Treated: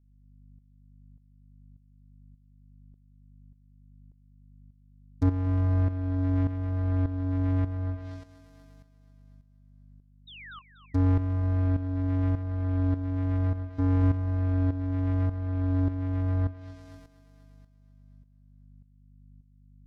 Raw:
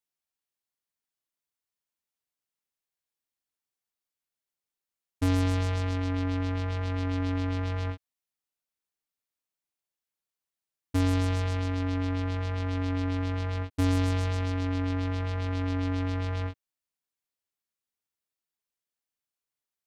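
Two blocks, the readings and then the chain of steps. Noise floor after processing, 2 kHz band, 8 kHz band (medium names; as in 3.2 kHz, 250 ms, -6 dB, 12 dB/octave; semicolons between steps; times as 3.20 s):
-60 dBFS, -8.0 dB, under -20 dB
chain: dead-time distortion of 0.15 ms; hum 50 Hz, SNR 25 dB; simulated room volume 2200 m³, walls furnished, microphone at 0.31 m; painted sound fall, 10.27–10.62 s, 1–3.9 kHz -44 dBFS; thinning echo 241 ms, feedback 56%, high-pass 180 Hz, level -9 dB; low-pass that closes with the level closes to 1.7 kHz, closed at -27 dBFS; bass shelf 190 Hz +5.5 dB; tremolo saw up 1.7 Hz, depth 70%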